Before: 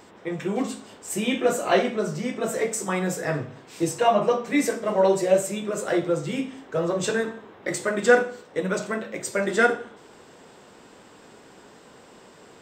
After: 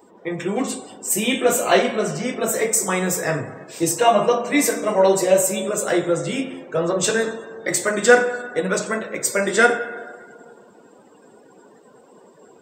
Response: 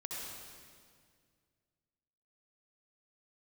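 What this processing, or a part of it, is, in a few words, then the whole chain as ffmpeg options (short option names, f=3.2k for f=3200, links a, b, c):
filtered reverb send: -filter_complex "[0:a]aemphasis=mode=production:type=50kf,asplit=2[a][b];[b]highpass=290,lowpass=6.3k[c];[1:a]atrim=start_sample=2205[d];[c][d]afir=irnorm=-1:irlink=0,volume=-9dB[e];[a][e]amix=inputs=2:normalize=0,afftdn=nr=20:nf=-44,volume=2.5dB"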